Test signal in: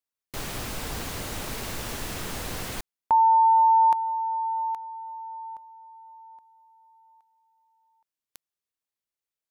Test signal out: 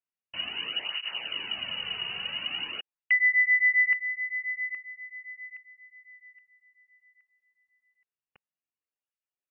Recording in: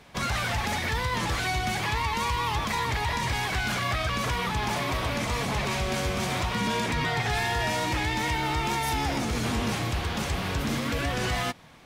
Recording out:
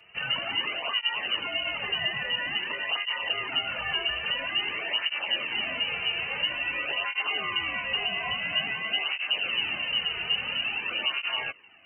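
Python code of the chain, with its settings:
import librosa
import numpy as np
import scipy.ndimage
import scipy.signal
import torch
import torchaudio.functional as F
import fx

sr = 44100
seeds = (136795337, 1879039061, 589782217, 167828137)

y = fx.low_shelf(x, sr, hz=170.0, db=6.0)
y = fx.freq_invert(y, sr, carrier_hz=2900)
y = fx.flanger_cancel(y, sr, hz=0.49, depth_ms=3.8)
y = y * librosa.db_to_amplitude(-2.0)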